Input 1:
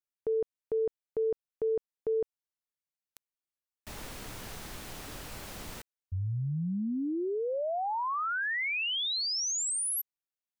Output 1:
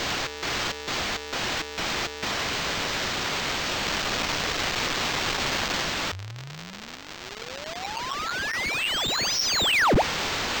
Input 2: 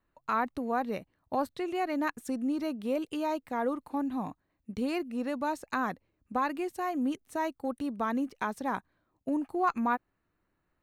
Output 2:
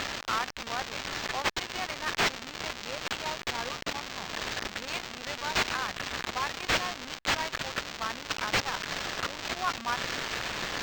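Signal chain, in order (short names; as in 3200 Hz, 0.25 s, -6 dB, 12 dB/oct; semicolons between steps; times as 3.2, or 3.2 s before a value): switching spikes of -25.5 dBFS; passive tone stack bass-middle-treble 10-0-10; decimation joined by straight lines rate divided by 4×; gain +6.5 dB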